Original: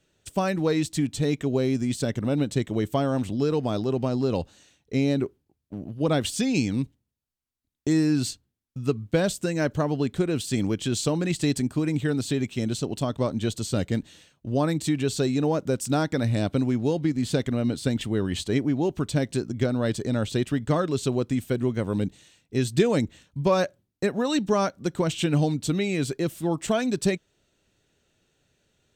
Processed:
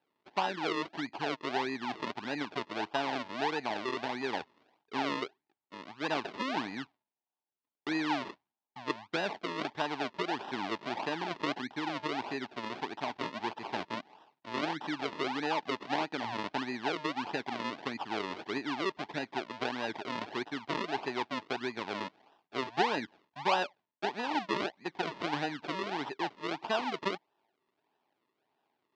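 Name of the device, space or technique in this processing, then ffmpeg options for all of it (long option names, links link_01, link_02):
circuit-bent sampling toy: -af "acrusher=samples=39:mix=1:aa=0.000001:lfo=1:lforange=39:lforate=1.6,highpass=420,equalizer=frequency=520:width_type=q:width=4:gain=-10,equalizer=frequency=870:width_type=q:width=4:gain=8,equalizer=frequency=1300:width_type=q:width=4:gain=-5,lowpass=frequency=4500:width=0.5412,lowpass=frequency=4500:width=1.3066,volume=-4.5dB"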